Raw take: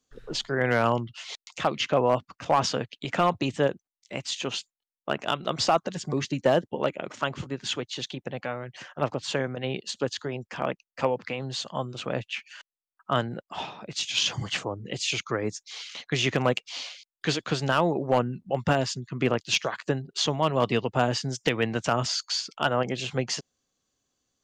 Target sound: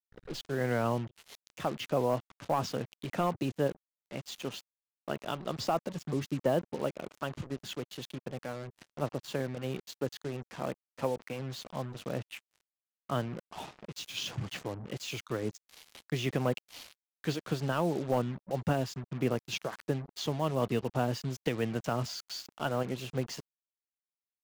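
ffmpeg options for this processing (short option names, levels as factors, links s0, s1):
-af "tiltshelf=f=780:g=4.5,acrusher=bits=5:mix=0:aa=0.5,volume=0.398"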